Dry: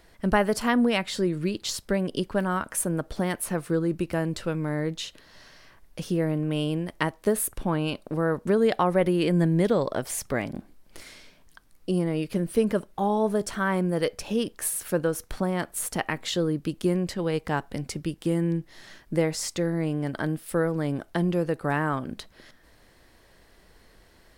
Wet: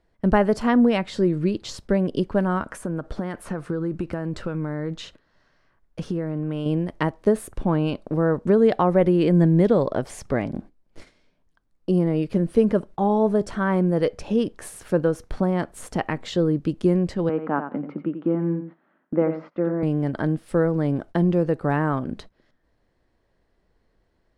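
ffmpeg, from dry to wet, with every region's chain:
ffmpeg -i in.wav -filter_complex "[0:a]asettb=1/sr,asplit=3[link_01][link_02][link_03];[link_01]atrim=end=2.674[link_04];[link_02]atrim=start=2.67:end=6.66,asetpts=PTS-STARTPTS,afade=type=in:duration=0.004:curve=qsin,afade=type=out:start_time=3.986:duration=0.004:curve=qsin,equalizer=frequency=1400:width_type=o:width=0.83:gain=5.5,acompressor=threshold=-27dB:ratio=5:attack=3.2:release=140:knee=1:detection=peak[link_05];[link_03]atrim=start=6.656[link_06];[link_04][link_05]acrossfade=duration=0.004:curve1=hsin:curve2=qsin[link_07];[link_07][link_06]acrossfade=duration=0.004:curve1=qsin:curve2=hsin,asettb=1/sr,asplit=3[link_08][link_09][link_10];[link_08]atrim=end=17.294[link_11];[link_09]atrim=start=17.29:end=19.83,asetpts=PTS-STARTPTS,afade=type=in:duration=0.004:curve=qsin,afade=type=out:start_time=2.536:duration=0.004:curve=qsin,highpass=frequency=200:width=0.5412,highpass=frequency=200:width=1.3066,equalizer=frequency=260:width_type=q:width=4:gain=4,equalizer=frequency=420:width_type=q:width=4:gain=-4,equalizer=frequency=1300:width_type=q:width=4:gain=7,equalizer=frequency=1900:width_type=q:width=4:gain=-7,lowpass=frequency=2100:width=0.5412,lowpass=frequency=2100:width=1.3066,aecho=1:1:88|176:0.355|0.0568,atrim=end_sample=112014[link_12];[link_10]atrim=start=19.826[link_13];[link_11][link_12]acrossfade=duration=0.004:curve1=hsin:curve2=qsin[link_14];[link_14][link_13]acrossfade=duration=0.004:curve1=qsin:curve2=hsin,agate=range=-15dB:threshold=-43dB:ratio=16:detection=peak,lowpass=7700,tiltshelf=frequency=1400:gain=5.5" out.wav

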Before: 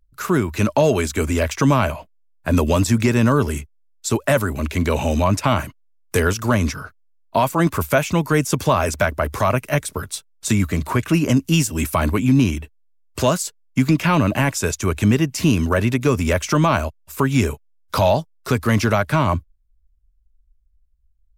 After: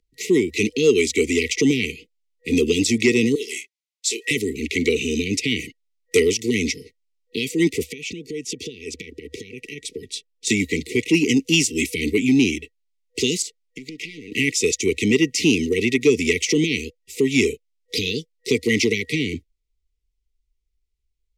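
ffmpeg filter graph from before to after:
ffmpeg -i in.wav -filter_complex "[0:a]asettb=1/sr,asplit=3[link_01][link_02][link_03];[link_01]atrim=end=3.354[link_04];[link_02]atrim=start=3.35:end=4.31,asetpts=PTS-STARTPTS,afade=type=in:duration=0.004:curve=qsin,afade=type=out:start_time=0.956:duration=0.004:curve=qsin,highpass=880,asplit=2[link_05][link_06];[link_06]adelay=26,volume=-5.5dB[link_07];[link_05][link_07]amix=inputs=2:normalize=0,atrim=end_sample=42336[link_08];[link_03]atrim=start=4.306[link_09];[link_04][link_08]acrossfade=duration=0.004:curve1=hsin:curve2=qsin[link_10];[link_10][link_09]acrossfade=duration=0.004:curve1=qsin:curve2=hsin,asettb=1/sr,asplit=3[link_11][link_12][link_13];[link_11]atrim=end=7.844[link_14];[link_12]atrim=start=7.84:end=10.47,asetpts=PTS-STARTPTS,afade=type=in:duration=0.004:curve=qsin,afade=type=out:start_time=2.626:duration=0.004:curve=qsin,aemphasis=mode=reproduction:type=cd,bandreject=frequency=2100:width=8.4,acompressor=threshold=-26dB:ratio=12:attack=3.2:release=140:knee=1:detection=peak[link_15];[link_13]atrim=start=10.466[link_16];[link_14][link_15]acrossfade=duration=0.004:curve1=hsin:curve2=qsin[link_17];[link_17][link_16]acrossfade=duration=0.004:curve1=qsin:curve2=hsin,asettb=1/sr,asplit=3[link_18][link_19][link_20];[link_18]atrim=end=13.424[link_21];[link_19]atrim=start=13.42:end=14.32,asetpts=PTS-STARTPTS,afade=type=in:duration=0.004:curve=qsin,afade=type=out:start_time=0.896:duration=0.004:curve=qsin,aeval=exprs='clip(val(0),-1,0.0841)':channel_layout=same,acompressor=threshold=-31dB:ratio=8:attack=3.2:release=140:knee=1:detection=peak[link_22];[link_20]atrim=start=14.316[link_23];[link_21][link_22]acrossfade=duration=0.004:curve1=hsin:curve2=qsin[link_24];[link_24][link_23]acrossfade=duration=0.004:curve1=qsin:curve2=hsin,afftfilt=real='re*(1-between(b*sr/4096,490,1900))':imag='im*(1-between(b*sr/4096,490,1900))':win_size=4096:overlap=0.75,acrossover=split=280 8000:gain=0.1 1 0.126[link_25][link_26][link_27];[link_25][link_26][link_27]amix=inputs=3:normalize=0,acontrast=57" out.wav

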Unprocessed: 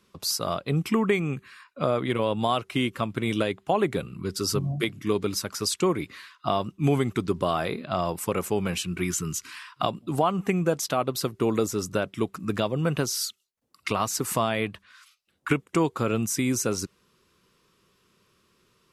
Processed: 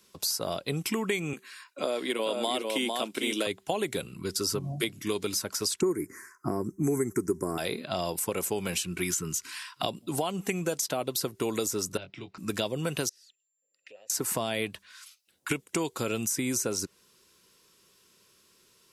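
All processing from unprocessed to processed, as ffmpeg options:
ffmpeg -i in.wav -filter_complex "[0:a]asettb=1/sr,asplit=3[link_01][link_02][link_03];[link_01]atrim=end=1.334[link_04];[link_02]atrim=start=1.33:end=3.47,asetpts=PTS-STARTPTS,afade=type=in:duration=0.004:curve=qsin,afade=type=out:start_time=2.136:duration=0.004:curve=qsin,highpass=frequency=230:width=0.5412,highpass=frequency=230:width=1.3066,aecho=1:1:451:0.562,atrim=end_sample=94374[link_05];[link_03]atrim=start=3.466[link_06];[link_04][link_05]acrossfade=duration=0.004:curve1=hsin:curve2=qsin[link_07];[link_07][link_06]acrossfade=duration=0.004:curve1=qsin:curve2=hsin,asettb=1/sr,asplit=3[link_08][link_09][link_10];[link_08]atrim=end=5.814[link_11];[link_09]atrim=start=5.81:end=7.58,asetpts=PTS-STARTPTS,afade=type=in:duration=0.004:curve=qsin,afade=type=out:start_time=1.766:duration=0.004:curve=qsin,asuperstop=centerf=3400:order=8:qfactor=0.87,lowshelf=frequency=480:width_type=q:width=3:gain=7.5[link_12];[link_10]atrim=start=7.576[link_13];[link_11][link_12]acrossfade=duration=0.004:curve1=hsin:curve2=qsin[link_14];[link_14][link_13]acrossfade=duration=0.004:curve1=qsin:curve2=hsin,asettb=1/sr,asplit=3[link_15][link_16][link_17];[link_15]atrim=end=11.974[link_18];[link_16]atrim=start=11.97:end=12.38,asetpts=PTS-STARTPTS,afade=type=in:duration=0.004:curve=qsin,afade=type=out:start_time=0.406:duration=0.004:curve=qsin,acrossover=split=160|3000[link_19][link_20][link_21];[link_20]acompressor=threshold=-37dB:ratio=6:attack=3.2:release=140:knee=2.83:detection=peak[link_22];[link_19][link_22][link_21]amix=inputs=3:normalize=0,highpass=100,equalizer=frequency=230:width_type=q:width=4:gain=-9,equalizer=frequency=470:width_type=q:width=4:gain=-6,equalizer=frequency=1100:width_type=q:width=4:gain=-4,equalizer=frequency=1700:width_type=q:width=4:gain=-4,equalizer=frequency=3300:width_type=q:width=4:gain=-8,lowpass=frequency=3900:width=0.5412,lowpass=frequency=3900:width=1.3066,asplit=2[link_23][link_24];[link_24]adelay=22,volume=-8.5dB[link_25];[link_23][link_25]amix=inputs=2:normalize=0,atrim=end_sample=18081[link_26];[link_17]atrim=start=12.376[link_27];[link_18][link_26]acrossfade=duration=0.004:curve1=hsin:curve2=qsin[link_28];[link_28][link_27]acrossfade=duration=0.004:curve1=qsin:curve2=hsin,asettb=1/sr,asplit=3[link_29][link_30][link_31];[link_29]atrim=end=13.094[link_32];[link_30]atrim=start=13.09:end=14.1,asetpts=PTS-STARTPTS,afade=type=in:duration=0.004:curve=qsin,afade=type=out:start_time=1.006:duration=0.004:curve=qsin,acompressor=threshold=-34dB:ratio=12:attack=3.2:release=140:knee=1:detection=peak,aeval=exprs='val(0)+0.00112*sin(2*PI*7300*n/s)':channel_layout=same,asplit=3[link_33][link_34][link_35];[link_33]bandpass=frequency=530:width_type=q:width=8,volume=0dB[link_36];[link_34]bandpass=frequency=1840:width_type=q:width=8,volume=-6dB[link_37];[link_35]bandpass=frequency=2480:width_type=q:width=8,volume=-9dB[link_38];[link_36][link_37][link_38]amix=inputs=3:normalize=0[link_39];[link_31]atrim=start=14.096[link_40];[link_32][link_39]acrossfade=duration=0.004:curve1=hsin:curve2=qsin[link_41];[link_41][link_40]acrossfade=duration=0.004:curve1=qsin:curve2=hsin,bass=frequency=250:gain=-6,treble=frequency=4000:gain=10,bandreject=frequency=1200:width=8,acrossover=split=710|2100[link_42][link_43][link_44];[link_42]acompressor=threshold=-28dB:ratio=4[link_45];[link_43]acompressor=threshold=-40dB:ratio=4[link_46];[link_44]acompressor=threshold=-30dB:ratio=4[link_47];[link_45][link_46][link_47]amix=inputs=3:normalize=0" out.wav

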